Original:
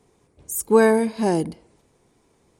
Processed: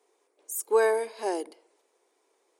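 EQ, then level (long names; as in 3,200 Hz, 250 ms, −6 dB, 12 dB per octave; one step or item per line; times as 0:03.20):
Butterworth high-pass 360 Hz 36 dB per octave
−6.0 dB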